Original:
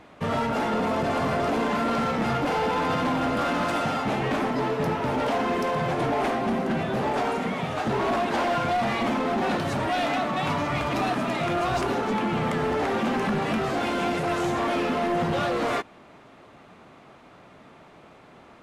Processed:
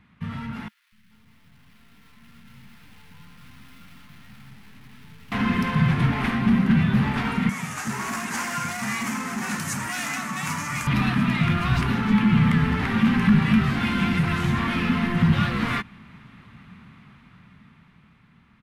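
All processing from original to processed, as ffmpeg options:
ffmpeg -i in.wav -filter_complex "[0:a]asettb=1/sr,asplit=3[link_01][link_02][link_03];[link_01]atrim=end=0.684[link_04];[link_02]atrim=start=0.68:end=5.32,asetpts=PTS-STARTPTS,afade=type=in:duration=0.004:curve=qsin,afade=type=out:start_time=4.636:duration=0.004:curve=qsin,aeval=exprs='(tanh(355*val(0)+0.35)-tanh(0.35))/355':channel_layout=same,acrossover=split=210|1300[link_05][link_06][link_07];[link_05]adelay=240[link_08];[link_06]adelay=430[link_09];[link_08][link_09][link_07]amix=inputs=3:normalize=0,atrim=end_sample=204624[link_10];[link_03]atrim=start=5.316[link_11];[link_04][link_10]acrossfade=duration=0.004:curve1=hsin:curve2=qsin[link_12];[link_12][link_11]acrossfade=duration=0.004:curve1=qsin:curve2=hsin,asettb=1/sr,asplit=3[link_13][link_14][link_15];[link_13]atrim=end=7.494[link_16];[link_14]atrim=start=7.49:end=10.87,asetpts=PTS-STARTPTS,afade=type=in:duration=0.004:curve=qsin,afade=type=out:start_time=3.376:duration=0.004:curve=qsin,highpass=frequency=660:poles=1,highshelf=frequency=5000:width_type=q:width=3:gain=12[link_17];[link_15]atrim=start=10.866[link_18];[link_16][link_17]acrossfade=duration=0.004:curve1=hsin:curve2=qsin[link_19];[link_19][link_18]acrossfade=duration=0.004:curve1=qsin:curve2=hsin,firequalizer=gain_entry='entry(210,0);entry(310,-18);entry(610,-27);entry(970,-13);entry(1900,-6);entry(7000,-17);entry(11000,-10)':delay=0.05:min_phase=1,dynaudnorm=framelen=340:gausssize=13:maxgain=12dB" out.wav

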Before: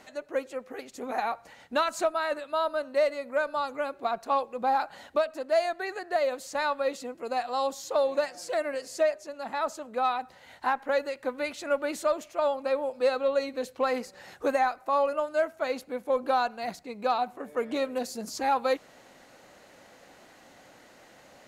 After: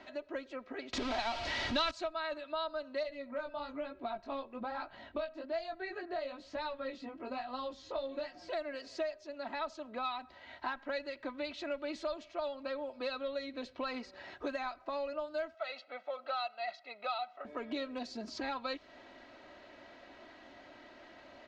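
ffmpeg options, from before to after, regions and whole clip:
ffmpeg -i in.wav -filter_complex "[0:a]asettb=1/sr,asplit=3[link_01][link_02][link_03];[link_01]atrim=end=0.934[link_04];[link_02]atrim=start=0.93:end=1.91,asetpts=PTS-STARTPTS,afade=type=in:duration=0.004:curve=qsin,afade=type=out:start_time=0.976:duration=0.004:curve=qsin,aeval=exprs='val(0)+0.5*0.0299*sgn(val(0))':channel_layout=same,acontrast=37[link_05];[link_03]atrim=start=1.906[link_06];[link_04][link_05]acrossfade=duration=0.004:curve1=hsin:curve2=qsin[link_07];[link_07][link_06]acrossfade=duration=0.004:curve1=qsin:curve2=hsin,asettb=1/sr,asplit=3[link_08][link_09][link_10];[link_08]atrim=end=3.034[link_11];[link_09]atrim=start=3.03:end=8.49,asetpts=PTS-STARTPTS,afade=type=in:duration=0.004:curve=qsin,afade=type=out:start_time=5.456:duration=0.004:curve=qsin,bass=frequency=250:gain=8,treble=frequency=4000:gain=-5,flanger=delay=15.5:depth=6.7:speed=1.1[link_12];[link_10]atrim=start=8.486[link_13];[link_11][link_12]acrossfade=duration=0.004:curve1=hsin:curve2=qsin[link_14];[link_14][link_13]acrossfade=duration=0.004:curve1=qsin:curve2=hsin,asettb=1/sr,asplit=3[link_15][link_16][link_17];[link_15]atrim=end=15.544[link_18];[link_16]atrim=start=15.54:end=17.45,asetpts=PTS-STARTPTS,afade=type=in:duration=0.004:curve=qsin,afade=type=out:start_time=1.906:duration=0.004:curve=qsin,highpass=690,lowpass=4400,aecho=1:1:1.5:0.81,atrim=end_sample=84231[link_19];[link_17]atrim=start=17.446[link_20];[link_18][link_19]acrossfade=duration=0.004:curve1=hsin:curve2=qsin[link_21];[link_21][link_20]acrossfade=duration=0.004:curve1=qsin:curve2=hsin,lowpass=frequency=4400:width=0.5412,lowpass=frequency=4400:width=1.3066,aecho=1:1:3.1:0.64,acrossover=split=120|3000[link_22][link_23][link_24];[link_23]acompressor=threshold=-37dB:ratio=3[link_25];[link_22][link_25][link_24]amix=inputs=3:normalize=0,volume=-2dB" out.wav

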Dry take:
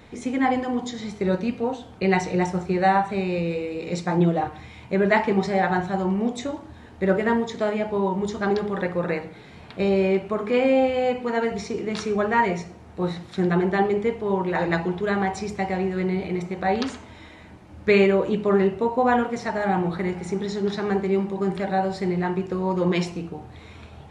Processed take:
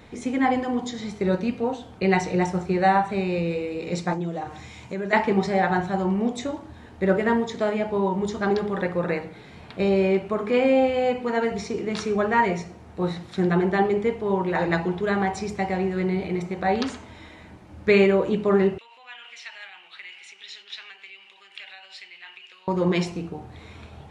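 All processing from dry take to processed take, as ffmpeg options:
ffmpeg -i in.wav -filter_complex "[0:a]asettb=1/sr,asplit=3[link_01][link_02][link_03];[link_01]atrim=end=4.134[link_04];[link_02]atrim=start=4.13:end=5.13,asetpts=PTS-STARTPTS,afade=type=in:duration=0.004:curve=qsin,afade=type=out:start_time=0.996:duration=0.004:curve=qsin,highpass=56,equalizer=frequency=6700:width_type=o:width=0.87:gain=11,acompressor=threshold=-30dB:ratio=2.5:attack=3.2:release=140:knee=1:detection=peak[link_05];[link_03]atrim=start=5.126[link_06];[link_04][link_05]acrossfade=duration=0.004:curve1=hsin:curve2=qsin[link_07];[link_07][link_06]acrossfade=duration=0.004:curve1=qsin:curve2=hsin,asettb=1/sr,asplit=3[link_08][link_09][link_10];[link_08]atrim=end=18.784[link_11];[link_09]atrim=start=18.78:end=22.68,asetpts=PTS-STARTPTS,afade=type=in:duration=0.004:curve=qsin,afade=type=out:start_time=3.896:duration=0.004:curve=qsin,highshelf=frequency=4500:gain=-11.5,acompressor=threshold=-24dB:ratio=6:attack=3.2:release=140:knee=1:detection=peak,highpass=frequency=2800:width_type=q:width=5.3[link_12];[link_10]atrim=start=22.676[link_13];[link_11][link_12]acrossfade=duration=0.004:curve1=hsin:curve2=qsin[link_14];[link_14][link_13]acrossfade=duration=0.004:curve1=qsin:curve2=hsin" out.wav

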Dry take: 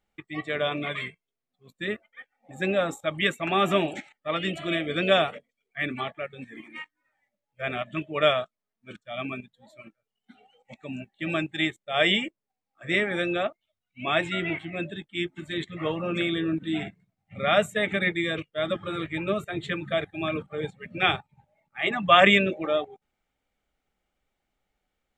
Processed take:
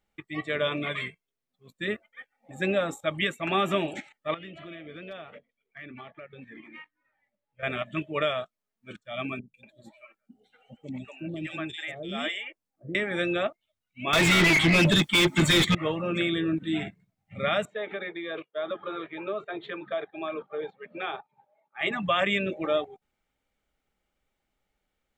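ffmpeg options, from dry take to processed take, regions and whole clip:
ffmpeg -i in.wav -filter_complex "[0:a]asettb=1/sr,asplit=3[link_01][link_02][link_03];[link_01]atrim=end=4.344[link_04];[link_02]atrim=start=4.34:end=7.63,asetpts=PTS-STARTPTS,afade=type=in:duration=0.004:curve=qsin,afade=type=out:start_time=3.286:duration=0.004:curve=qsin,lowpass=3200,asoftclip=type=hard:threshold=-12dB,acompressor=threshold=-42dB:ratio=4:attack=3.2:release=140:knee=1:detection=peak[link_05];[link_03]atrim=start=7.626[link_06];[link_04][link_05]acrossfade=duration=0.004:curve1=hsin:curve2=qsin[link_07];[link_07][link_06]acrossfade=duration=0.004:curve1=qsin:curve2=hsin,asettb=1/sr,asplit=3[link_08][link_09][link_10];[link_08]atrim=end=9.394[link_11];[link_09]atrim=start=9.39:end=12.95,asetpts=PTS-STARTPTS,afade=type=in:duration=0.004:curve=qsin,afade=type=out:start_time=3.556:duration=0.004:curve=qsin,acompressor=threshold=-30dB:ratio=2:attack=3.2:release=140:knee=1:detection=peak,acrossover=split=550|3000[link_12][link_13][link_14];[link_14]adelay=150[link_15];[link_13]adelay=240[link_16];[link_12][link_16][link_15]amix=inputs=3:normalize=0,atrim=end_sample=156996[link_17];[link_10]atrim=start=12.946[link_18];[link_11][link_17]acrossfade=duration=0.004:curve1=hsin:curve2=qsin[link_19];[link_19][link_18]acrossfade=duration=0.004:curve1=qsin:curve2=hsin,asettb=1/sr,asplit=3[link_20][link_21][link_22];[link_20]atrim=end=14.134[link_23];[link_21]atrim=start=14.13:end=15.75,asetpts=PTS-STARTPTS,afade=type=in:duration=0.004:curve=qsin,afade=type=out:start_time=1.616:duration=0.004:curve=qsin,bass=frequency=250:gain=11,treble=frequency=4000:gain=13,aecho=1:1:0.9:0.31,atrim=end_sample=71442,asplit=2[link_24][link_25];[link_25]highpass=frequency=720:poles=1,volume=33dB,asoftclip=type=tanh:threshold=-9dB[link_26];[link_24][link_26]amix=inputs=2:normalize=0,lowpass=frequency=3000:poles=1,volume=-6dB[link_27];[link_22]atrim=start=15.746[link_28];[link_23][link_27]acrossfade=duration=0.004:curve1=hsin:curve2=qsin[link_29];[link_29][link_28]acrossfade=duration=0.004:curve1=qsin:curve2=hsin,asettb=1/sr,asplit=3[link_30][link_31][link_32];[link_30]atrim=end=17.654[link_33];[link_31]atrim=start=17.65:end=21.81,asetpts=PTS-STARTPTS,afade=type=in:duration=0.004:curve=qsin,afade=type=out:start_time=4.156:duration=0.004:curve=qsin,acompressor=threshold=-28dB:ratio=3:attack=3.2:release=140:knee=1:detection=peak,highpass=400,equalizer=frequency=410:width_type=q:width=4:gain=5,equalizer=frequency=720:width_type=q:width=4:gain=4,equalizer=frequency=1000:width_type=q:width=4:gain=4,equalizer=frequency=2000:width_type=q:width=4:gain=-7,equalizer=frequency=2800:width_type=q:width=4:gain=-7,lowpass=frequency=3500:width=0.5412,lowpass=frequency=3500:width=1.3066[link_34];[link_32]atrim=start=21.806[link_35];[link_33][link_34]acrossfade=duration=0.004:curve1=hsin:curve2=qsin[link_36];[link_36][link_35]acrossfade=duration=0.004:curve1=qsin:curve2=hsin,bandreject=frequency=730:width=17,alimiter=limit=-14.5dB:level=0:latency=1:release=263" out.wav

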